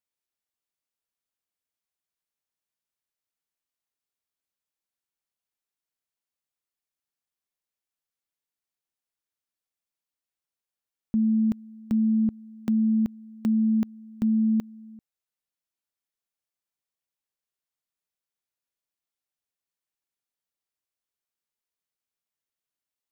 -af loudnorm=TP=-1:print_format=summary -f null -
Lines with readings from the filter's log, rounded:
Input Integrated:    -25.6 LUFS
Input True Peak:     -18.0 dBTP
Input LRA:             5.1 LU
Input Threshold:     -36.0 LUFS